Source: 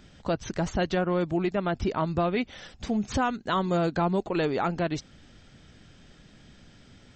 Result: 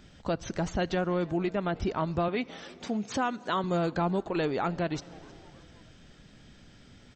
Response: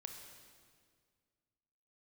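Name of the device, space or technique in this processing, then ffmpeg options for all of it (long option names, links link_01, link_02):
compressed reverb return: -filter_complex "[0:a]asettb=1/sr,asplit=3[link_01][link_02][link_03];[link_01]atrim=end=2.284[link_04];[link_02]atrim=start=2.28:end=3.64,asetpts=PTS-STARTPTS,afade=type=in:duration=0.004:curve=qsin,afade=type=out:start_time=1.356:duration=0.004:curve=qsin,highpass=190[link_05];[link_03]atrim=start=3.636[link_06];[link_04][link_05]acrossfade=duration=0.004:curve1=hsin:curve2=qsin[link_07];[link_07][link_06]acrossfade=duration=0.004:curve1=qsin:curve2=hsin,asplit=4[link_08][link_09][link_10][link_11];[link_09]adelay=315,afreqshift=110,volume=-24dB[link_12];[link_10]adelay=630,afreqshift=220,volume=-30dB[link_13];[link_11]adelay=945,afreqshift=330,volume=-36dB[link_14];[link_08][link_12][link_13][link_14]amix=inputs=4:normalize=0,asplit=2[link_15][link_16];[1:a]atrim=start_sample=2205[link_17];[link_16][link_17]afir=irnorm=-1:irlink=0,acompressor=threshold=-37dB:ratio=6,volume=-4.5dB[link_18];[link_15][link_18]amix=inputs=2:normalize=0,volume=-3.5dB"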